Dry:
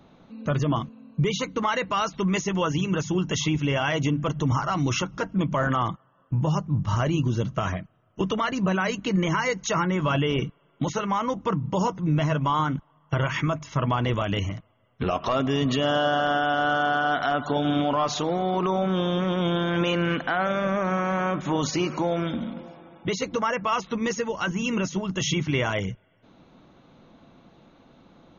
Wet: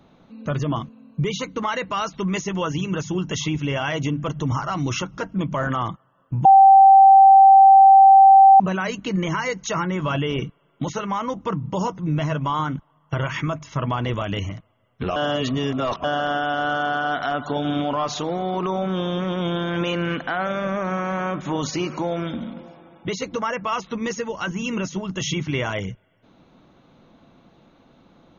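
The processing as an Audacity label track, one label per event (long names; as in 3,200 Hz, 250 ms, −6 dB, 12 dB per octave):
6.450000	8.600000	beep over 778 Hz −6.5 dBFS
15.160000	16.040000	reverse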